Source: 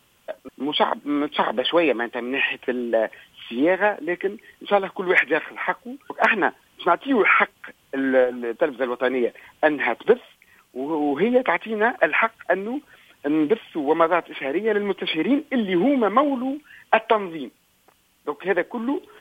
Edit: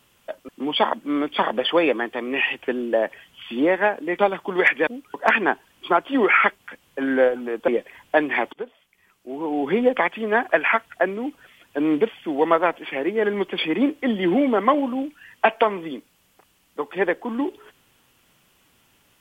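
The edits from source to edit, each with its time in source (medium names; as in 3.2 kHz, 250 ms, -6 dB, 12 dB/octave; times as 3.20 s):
4.19–4.70 s: delete
5.38–5.83 s: delete
8.64–9.17 s: delete
10.02–11.32 s: fade in, from -19 dB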